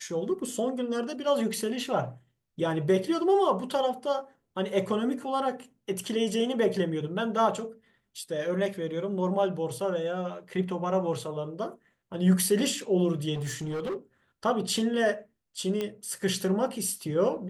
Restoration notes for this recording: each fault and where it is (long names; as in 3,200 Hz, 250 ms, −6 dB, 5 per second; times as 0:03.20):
0:13.34–0:13.96: clipping −29 dBFS
0:15.81: click −18 dBFS